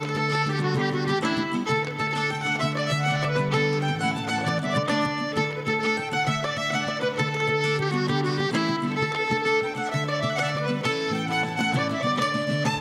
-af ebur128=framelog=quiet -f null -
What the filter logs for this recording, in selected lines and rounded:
Integrated loudness:
  I:         -24.8 LUFS
  Threshold: -34.8 LUFS
Loudness range:
  LRA:         0.6 LU
  Threshold: -44.8 LUFS
  LRA low:   -25.1 LUFS
  LRA high:  -24.5 LUFS